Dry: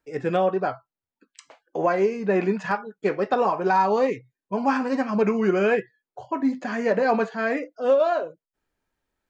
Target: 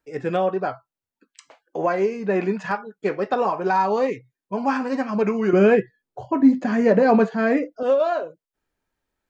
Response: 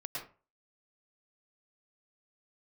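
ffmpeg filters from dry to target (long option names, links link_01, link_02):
-filter_complex "[0:a]asettb=1/sr,asplit=3[link_01][link_02][link_03];[link_01]atrim=end=5.534[link_04];[link_02]atrim=start=5.53:end=7.83,asetpts=PTS-STARTPTS,afade=type=in:duration=0.004:curve=qsin,afade=type=out:start_time=2.296:duration=0.004:curve=qsin,lowshelf=frequency=420:gain=12[link_05];[link_03]atrim=start=7.826[link_06];[link_04][link_05]acrossfade=duration=0.004:curve1=hsin:curve2=qsin[link_07];[link_07][link_06]acrossfade=duration=0.004:curve1=qsin:curve2=hsin"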